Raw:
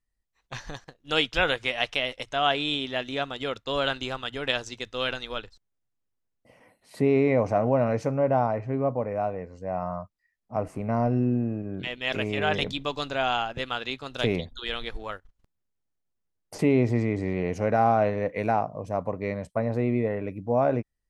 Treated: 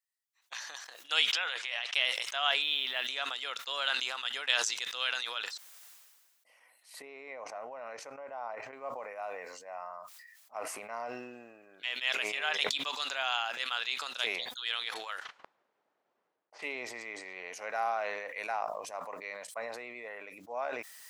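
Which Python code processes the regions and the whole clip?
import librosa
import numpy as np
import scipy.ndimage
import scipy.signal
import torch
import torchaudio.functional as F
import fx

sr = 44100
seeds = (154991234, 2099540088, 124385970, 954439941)

y = fx.chain(x, sr, fx.highpass(hz=320.0, slope=12),
    fx.air_absorb(metres=61.0),
    fx.over_compress(threshold_db=-36.0, ratio=-1.0), at=(1.33, 1.94))
y = fx.chain(y, sr, fx.lowpass(hz=4300.0, slope=24),
    fx.low_shelf(hz=120.0, db=10.0),
    fx.quant_companded(bits=8), at=(2.62, 3.07))
y = fx.chain(y, sr, fx.level_steps(step_db=9),
    fx.high_shelf(hz=2100.0, db=-8.0), at=(7.02, 8.73))
y = fx.chain(y, sr, fx.env_lowpass(base_hz=480.0, full_db=-31.0),
    fx.peak_eq(hz=4300.0, db=3.5, octaves=2.2), at=(14.94, 16.68))
y = scipy.signal.sosfilt(scipy.signal.butter(2, 930.0, 'highpass', fs=sr, output='sos'), y)
y = fx.tilt_eq(y, sr, slope=2.0)
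y = fx.sustainer(y, sr, db_per_s=36.0)
y = F.gain(torch.from_numpy(y), -5.0).numpy()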